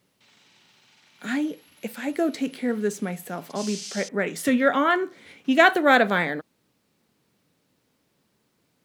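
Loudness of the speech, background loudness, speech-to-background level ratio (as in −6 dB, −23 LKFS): −23.5 LKFS, −36.5 LKFS, 13.0 dB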